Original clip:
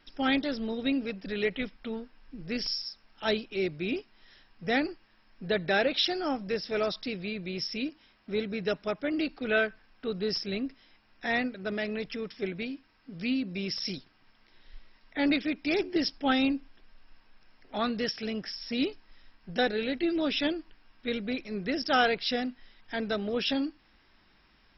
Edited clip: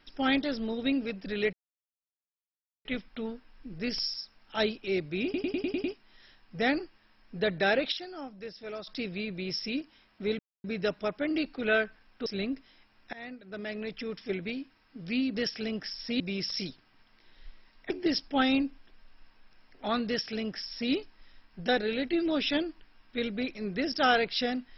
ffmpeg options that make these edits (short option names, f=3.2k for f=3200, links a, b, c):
-filter_complex "[0:a]asplit=16[a][b][c][d][e][f][g][h][i][j][k][l][m][n][o][p];[a]atrim=end=1.53,asetpts=PTS-STARTPTS,afade=t=out:st=1.526:d=0.004:c=hsin,apad=pad_dur=1.32[q];[b]atrim=start=1.53:end=4.022,asetpts=PTS-STARTPTS,afade=t=in:d=0.004:c=hsin[r];[c]atrim=start=3.918:end=4.022[s];[d]atrim=start=3.918:end=4.022[t];[e]atrim=start=3.918:end=4.022[u];[f]atrim=start=3.918:end=4.022[v];[g]atrim=start=3.918:end=4.022[w];[h]atrim=start=3.918:end=6,asetpts=PTS-STARTPTS,afade=t=out:st=1.832:d=0.25:c=log:silence=0.298538[x];[i]atrim=start=6:end=6.95,asetpts=PTS-STARTPTS,volume=-10.5dB[y];[j]atrim=start=6.95:end=8.47,asetpts=PTS-STARTPTS,afade=t=in:d=0.25:c=log:silence=0.298538,afade=t=out:st=1.516:d=0.004:c=hsin,apad=pad_dur=0.25[z];[k]atrim=start=8.47:end=10.092,asetpts=PTS-STARTPTS,afade=t=in:d=0.004:c=hsin[aa];[l]atrim=start=10.388:end=11.26,asetpts=PTS-STARTPTS,afade=t=out:st=0.868:d=0.004:c=hsin:silence=0.0891251[ab];[m]atrim=start=11.26:end=13.482,asetpts=PTS-STARTPTS,afade=t=in:d=1.03:silence=0.0891251[ac];[n]atrim=start=17.968:end=18.822[ad];[o]atrim=start=13.478:end=15.182[ae];[p]atrim=start=15.798[af];[q][r]concat=n=2:v=0:a=1[ag];[ag][s]acrossfade=d=0.004:c1=hsin:c2=hsin[ah];[ah][t]acrossfade=d=0.004:c1=hsin:c2=hsin[ai];[ai][u]acrossfade=d=0.004:c1=hsin:c2=hsin[aj];[aj][v]acrossfade=d=0.004:c1=hsin:c2=hsin[ak];[ak][w]acrossfade=d=0.004:c1=hsin:c2=hsin[al];[x][y][z][aa]concat=n=4:v=0:a=1[am];[al][am]acrossfade=d=0.004:c1=hsin:c2=hsin[an];[ab][ac]concat=n=2:v=0:a=1[ao];[an][ao]acrossfade=d=0.004:c1=hsin:c2=hsin[ap];[ap][ad]acrossfade=d=0.004:c1=hsin:c2=hsin[aq];[aq][ae]acrossfade=d=0.004:c1=hsin:c2=hsin[ar];[ar][af]acrossfade=d=0.004:c1=hsin:c2=hsin"